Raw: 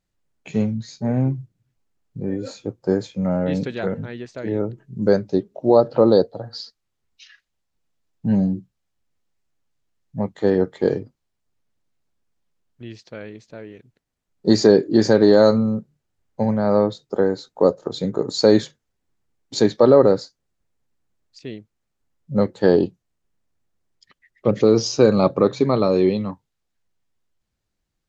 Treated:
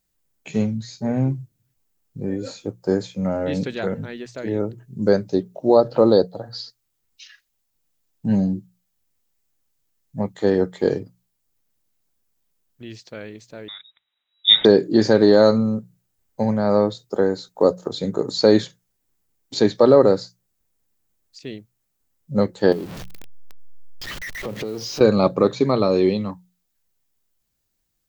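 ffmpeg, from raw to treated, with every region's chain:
-filter_complex "[0:a]asettb=1/sr,asplit=3[s0][s1][s2];[s0]atrim=end=13.684[s3];[s1]atrim=start=13.68:end=14.65,asetpts=PTS-STARTPTS,afade=t=in:d=0.004:c=qsin,afade=t=out:st=0.966:d=0.004:c=qsin,equalizer=f=2500:t=o:w=2.1:g=7.5,lowpass=f=3300:t=q:w=0.5098,lowpass=f=3300:t=q:w=0.6013,lowpass=f=3300:t=q:w=0.9,lowpass=f=3300:t=q:w=2.563,afreqshift=-3900[s4];[s2]atrim=start=14.646[s5];[s3][s4]acrossfade=d=0.004:c1=hsin:c2=qsin[s6];[s6][s5]acrossfade=d=0.004:c1=qsin:c2=hsin,asettb=1/sr,asplit=3[s7][s8][s9];[s7]atrim=end=22.724[s10];[s8]atrim=start=22.72:end=25.01,asetpts=PTS-STARTPTS,afade=t=in:d=0.004:c=qsin,afade=t=out:st=2.286:d=0.004:c=qsin,aeval=exprs='val(0)+0.5*0.0501*sgn(val(0))':c=same,acompressor=threshold=0.0447:ratio=4:attack=3.2:release=140:knee=1:detection=peak[s11];[s9]atrim=start=25.006[s12];[s10][s11]acrossfade=d=0.004:c1=hsin:c2=qsin[s13];[s13][s12]acrossfade=d=0.004:c1=qsin:c2=hsin,aemphasis=mode=production:type=50fm,bandreject=f=60:t=h:w=6,bandreject=f=120:t=h:w=6,bandreject=f=180:t=h:w=6,acrossover=split=4700[s14][s15];[s15]acompressor=threshold=0.00562:ratio=4:attack=1:release=60[s16];[s14][s16]amix=inputs=2:normalize=0"

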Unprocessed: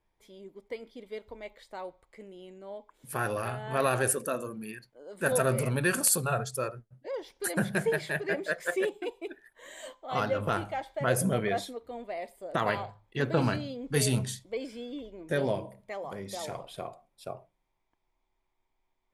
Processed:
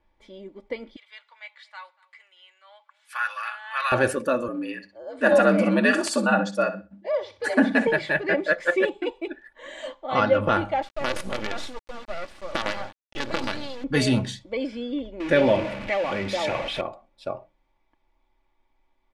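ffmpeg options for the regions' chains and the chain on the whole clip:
-filter_complex "[0:a]asettb=1/sr,asplit=3[s0][s1][s2];[s0]atrim=end=0.964[s3];[s1]atrim=start=0.96:end=3.92,asetpts=PTS-STARTPTS,afade=t=in:d=0.004:c=qsin,afade=t=out:st=2.956:d=0.004:c=qsin,highpass=f=1200:w=0.5412,highpass=f=1200:w=1.3066,aecho=1:1:236:0.0668,atrim=end_sample=130536[s4];[s2]atrim=start=3.916[s5];[s3][s4]acrossfade=d=0.004:c1=hsin:c2=qsin[s6];[s6][s5]acrossfade=d=0.004:c1=qsin:c2=hsin,asettb=1/sr,asplit=3[s7][s8][s9];[s7]atrim=end=4.484[s10];[s8]atrim=start=4.48:end=7.87,asetpts=PTS-STARTPTS,afade=t=in:d=0.004:c=qsin,afade=t=out:st=3.386:d=0.004:c=qsin,lowpass=f=10000:w=0.5412,lowpass=f=10000:w=1.3066,aecho=1:1:62|124|186:0.224|0.0493|0.0108,atrim=end_sample=149499,afreqshift=70[s11];[s9]atrim=start=7.866[s12];[s10][s11]acrossfade=d=0.004:c1=hsin:c2=qsin[s13];[s13][s12]acrossfade=d=0.004:c1=qsin:c2=hsin,asettb=1/sr,asplit=3[s14][s15][s16];[s14]atrim=end=10.824[s17];[s15]atrim=start=10.82:end=13.84,asetpts=PTS-STARTPTS,afade=t=in:d=0.004:c=qsin,afade=t=out:st=3.016:d=0.004:c=qsin,bass=f=250:g=-6,treble=f=4000:g=13,acompressor=threshold=0.0316:ratio=4:attack=3.2:release=140:knee=1:detection=peak,acrusher=bits=5:dc=4:mix=0:aa=0.000001[s18];[s16]atrim=start=13.836[s19];[s17][s18]acrossfade=d=0.004:c1=hsin:c2=qsin[s20];[s20][s19]acrossfade=d=0.004:c1=qsin:c2=hsin,asettb=1/sr,asplit=3[s21][s22][s23];[s21]atrim=end=15.204[s24];[s22]atrim=start=15.2:end=16.81,asetpts=PTS-STARTPTS,afade=t=in:d=0.004:c=qsin,afade=t=out:st=1.606:d=0.004:c=qsin,aeval=exprs='val(0)+0.5*0.0133*sgn(val(0))':c=same,equalizer=f=2400:w=2.2:g=9.5[s25];[s23]atrim=start=16.806[s26];[s24][s25]acrossfade=d=0.004:c1=hsin:c2=qsin[s27];[s27][s26]acrossfade=d=0.004:c1=qsin:c2=hsin,lowpass=3900,aecho=1:1:3.5:0.51,volume=2.37"

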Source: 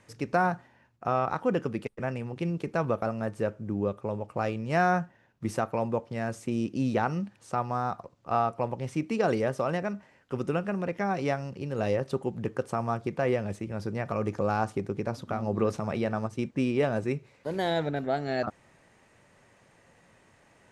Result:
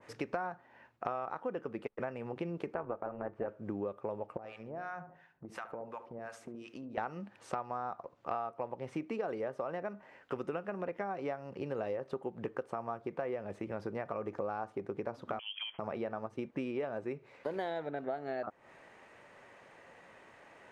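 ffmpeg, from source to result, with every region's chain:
-filter_complex "[0:a]asettb=1/sr,asplit=3[s0][s1][s2];[s0]atrim=end=2.744[s3];[s1]atrim=start=2.74:end=3.48,asetpts=PTS-STARTPTS,afade=t=in:d=0.004:c=qsin,afade=t=out:st=0.736:d=0.004:c=qsin,lowpass=2100,tremolo=f=240:d=0.667[s4];[s2]atrim=start=3.476[s5];[s3][s4]acrossfade=d=0.004:c1=hsin:c2=qsin[s6];[s6][s5]acrossfade=d=0.004:c1=qsin:c2=hsin,asettb=1/sr,asplit=3[s7][s8][s9];[s7]atrim=end=4.374[s10];[s8]atrim=start=4.37:end=6.98,asetpts=PTS-STARTPTS,afade=t=in:d=0.004:c=qsin,afade=t=out:st=2.606:d=0.004:c=qsin,acrossover=split=900[s11][s12];[s11]aeval=exprs='val(0)*(1-1/2+1/2*cos(2*PI*2.8*n/s))':c=same[s13];[s12]aeval=exprs='val(0)*(1-1/2-1/2*cos(2*PI*2.8*n/s))':c=same[s14];[s13][s14]amix=inputs=2:normalize=0,acompressor=threshold=0.00794:ratio=8:attack=3.2:release=140:knee=1:detection=peak,asplit=2[s15][s16];[s16]adelay=72,lowpass=f=1200:p=1,volume=0.316,asplit=2[s17][s18];[s18]adelay=72,lowpass=f=1200:p=1,volume=0.46,asplit=2[s19][s20];[s20]adelay=72,lowpass=f=1200:p=1,volume=0.46,asplit=2[s21][s22];[s22]adelay=72,lowpass=f=1200:p=1,volume=0.46,asplit=2[s23][s24];[s24]adelay=72,lowpass=f=1200:p=1,volume=0.46[s25];[s15][s17][s19][s21][s23][s25]amix=inputs=6:normalize=0,atrim=end_sample=115101[s26];[s9]atrim=start=6.976[s27];[s10][s26]acrossfade=d=0.004:c1=hsin:c2=qsin[s28];[s28][s27]acrossfade=d=0.004:c1=qsin:c2=hsin,asettb=1/sr,asplit=3[s29][s30][s31];[s29]atrim=end=15.394[s32];[s30]atrim=start=15.39:end=15.79,asetpts=PTS-STARTPTS,afade=t=in:d=0.004:c=qsin,afade=t=out:st=0.396:d=0.004:c=qsin,highpass=f=340:w=0.5412,highpass=f=340:w=1.3066,lowpass=f=3100:t=q:w=0.5098,lowpass=f=3100:t=q:w=0.6013,lowpass=f=3100:t=q:w=0.9,lowpass=f=3100:t=q:w=2.563,afreqshift=-3600[s33];[s31]atrim=start=15.786[s34];[s32][s33]acrossfade=d=0.004:c1=hsin:c2=qsin[s35];[s35][s34]acrossfade=d=0.004:c1=qsin:c2=hsin,bass=f=250:g=-13,treble=f=4000:g=-12,acompressor=threshold=0.01:ratio=6,adynamicequalizer=threshold=0.00126:dfrequency=1600:dqfactor=0.7:tfrequency=1600:tqfactor=0.7:attack=5:release=100:ratio=0.375:range=3.5:mode=cutabove:tftype=highshelf,volume=1.88"

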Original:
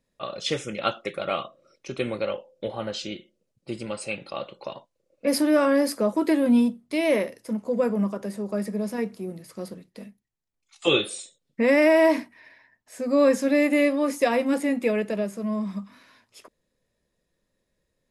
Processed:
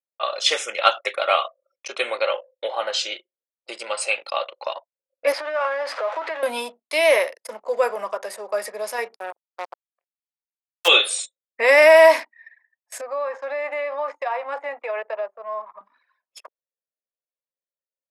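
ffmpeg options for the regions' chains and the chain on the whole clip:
-filter_complex "[0:a]asettb=1/sr,asplit=3[s0][s1][s2];[s0]atrim=end=5.324[s3];[s1]atrim=start=5.32:end=6.43,asetpts=PTS-STARTPTS,afade=t=in:d=0.004:c=qsin,afade=t=out:st=1.106:d=0.004:c=qsin,aeval=exprs='val(0)+0.5*0.0282*sgn(val(0))':c=same,acompressor=threshold=0.0794:ratio=16:attack=3.2:release=140:knee=1:detection=peak,highpass=530,lowpass=2500[s4];[s2]atrim=start=6.426[s5];[s3][s4]acrossfade=d=0.004:c1=hsin:c2=qsin[s6];[s6][s5]acrossfade=d=0.004:c1=qsin:c2=hsin,asettb=1/sr,asplit=3[s7][s8][s9];[s7]atrim=end=9.164[s10];[s8]atrim=start=9.16:end=10.88,asetpts=PTS-STARTPTS,afade=t=in:d=0.004:c=qsin,afade=t=out:st=1.716:d=0.004:c=qsin,aeval=exprs='if(lt(val(0),0),0.447*val(0),val(0))':c=same,acrusher=bits=4:mix=0:aa=0.5[s11];[s9]atrim=start=10.876[s12];[s10][s11]acrossfade=d=0.004:c1=hsin:c2=qsin[s13];[s13][s12]acrossfade=d=0.004:c1=qsin:c2=hsin,asettb=1/sr,asplit=3[s14][s15][s16];[s14]atrim=end=13.014[s17];[s15]atrim=start=13.01:end=15.81,asetpts=PTS-STARTPTS,afade=t=in:d=0.004:c=qsin,afade=t=out:st=2.796:d=0.004:c=qsin,bandpass=f=930:t=q:w=1.4,acompressor=threshold=0.0398:ratio=10:attack=3.2:release=140:knee=1:detection=peak[s18];[s16]atrim=start=15.806[s19];[s17][s18]acrossfade=d=0.004:c1=hsin:c2=qsin[s20];[s20][s19]acrossfade=d=0.004:c1=qsin:c2=hsin,anlmdn=0.0398,highpass=f=610:w=0.5412,highpass=f=610:w=1.3066,acontrast=27,volume=1.78"

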